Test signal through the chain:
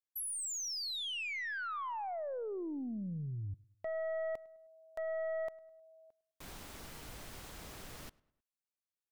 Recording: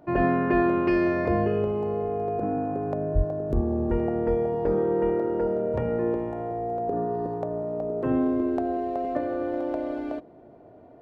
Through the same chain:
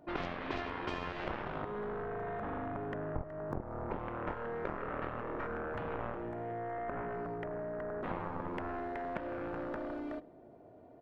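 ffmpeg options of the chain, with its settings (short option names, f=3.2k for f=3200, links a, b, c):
-filter_complex "[0:a]aeval=exprs='0.316*(cos(1*acos(clip(val(0)/0.316,-1,1)))-cos(1*PI/2))+0.0355*(cos(2*acos(clip(val(0)/0.316,-1,1)))-cos(2*PI/2))+0.0398*(cos(3*acos(clip(val(0)/0.316,-1,1)))-cos(3*PI/2))+0.00794*(cos(6*acos(clip(val(0)/0.316,-1,1)))-cos(6*PI/2))+0.0794*(cos(7*acos(clip(val(0)/0.316,-1,1)))-cos(7*PI/2))':c=same,acompressor=threshold=-26dB:ratio=6,asplit=2[a][b];[b]adelay=104,lowpass=f=3.3k:p=1,volume=-23dB,asplit=2[c][d];[d]adelay=104,lowpass=f=3.3k:p=1,volume=0.47,asplit=2[e][f];[f]adelay=104,lowpass=f=3.3k:p=1,volume=0.47[g];[a][c][e][g]amix=inputs=4:normalize=0,volume=-7.5dB"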